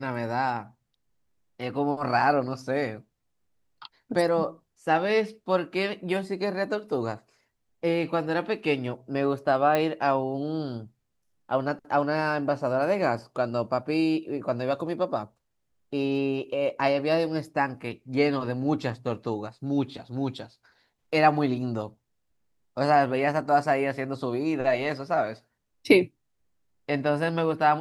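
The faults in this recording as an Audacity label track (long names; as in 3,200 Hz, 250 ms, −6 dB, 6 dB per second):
9.750000	9.750000	click −12 dBFS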